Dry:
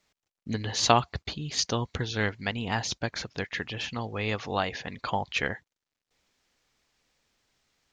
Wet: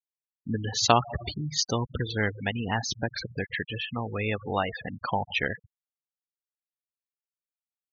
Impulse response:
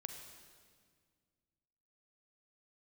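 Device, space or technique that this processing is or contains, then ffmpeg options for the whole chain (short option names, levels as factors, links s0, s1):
ducked reverb: -filter_complex "[0:a]asplit=3[s0][s1][s2];[1:a]atrim=start_sample=2205[s3];[s1][s3]afir=irnorm=-1:irlink=0[s4];[s2]apad=whole_len=349332[s5];[s4][s5]sidechaincompress=threshold=0.0158:ratio=12:attack=16:release=117,volume=1[s6];[s0][s6]amix=inputs=2:normalize=0,afftfilt=real='re*gte(hypot(re,im),0.0501)':imag='im*gte(hypot(re,im),0.0501)':win_size=1024:overlap=0.75"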